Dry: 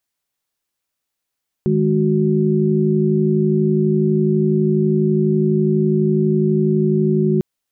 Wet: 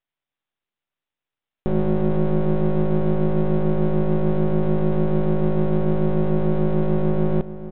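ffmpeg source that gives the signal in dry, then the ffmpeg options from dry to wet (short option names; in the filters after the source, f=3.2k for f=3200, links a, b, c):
-f lavfi -i "aevalsrc='0.133*(sin(2*PI*155.56*t)+sin(2*PI*207.65*t)+sin(2*PI*369.99*t))':d=5.75:s=44100"
-filter_complex "[0:a]aresample=8000,aeval=exprs='max(val(0),0)':c=same,aresample=44100,asplit=2[a][b];[b]adelay=431.5,volume=-13dB,highshelf=f=4k:g=-9.71[c];[a][c]amix=inputs=2:normalize=0"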